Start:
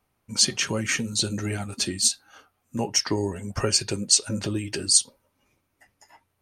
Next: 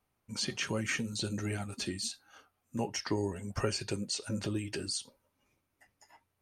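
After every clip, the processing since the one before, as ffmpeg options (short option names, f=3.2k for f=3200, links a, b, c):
-filter_complex "[0:a]acrossover=split=3400[a][b];[b]acompressor=threshold=-30dB:ratio=4:attack=1:release=60[c];[a][c]amix=inputs=2:normalize=0,volume=-6.5dB"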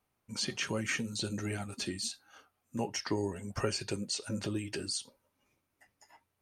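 -af "lowshelf=f=84:g=-5"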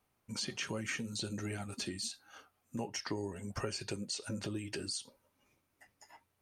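-af "acompressor=threshold=-42dB:ratio=2,volume=2dB"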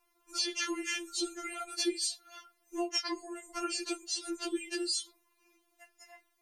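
-af "afftfilt=real='re*4*eq(mod(b,16),0)':imag='im*4*eq(mod(b,16),0)':win_size=2048:overlap=0.75,volume=8dB"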